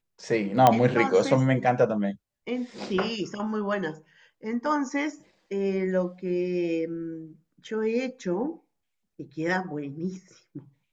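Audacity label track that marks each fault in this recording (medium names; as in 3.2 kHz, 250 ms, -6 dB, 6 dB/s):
0.670000	0.670000	pop -5 dBFS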